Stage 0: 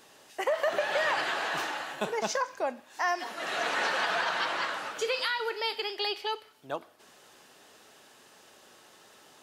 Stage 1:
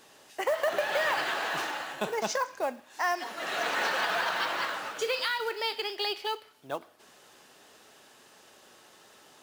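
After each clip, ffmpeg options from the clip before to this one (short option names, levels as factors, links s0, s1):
-af "acrusher=bits=5:mode=log:mix=0:aa=0.000001"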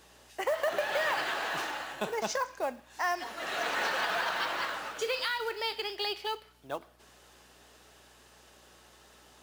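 -af "aeval=exprs='val(0)+0.000631*(sin(2*PI*60*n/s)+sin(2*PI*2*60*n/s)/2+sin(2*PI*3*60*n/s)/3+sin(2*PI*4*60*n/s)/4+sin(2*PI*5*60*n/s)/5)':c=same,volume=0.794"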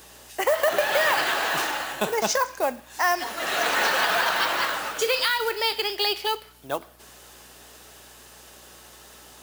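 -af "highshelf=f=9000:g=12,volume=2.51"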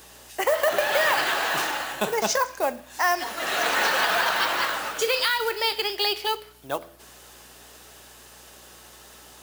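-af "bandreject=f=84.26:t=h:w=4,bandreject=f=168.52:t=h:w=4,bandreject=f=252.78:t=h:w=4,bandreject=f=337.04:t=h:w=4,bandreject=f=421.3:t=h:w=4,bandreject=f=505.56:t=h:w=4,bandreject=f=589.82:t=h:w=4,bandreject=f=674.08:t=h:w=4"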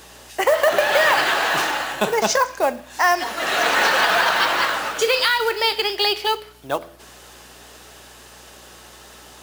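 -af "highshelf=f=9700:g=-8,volume=1.88"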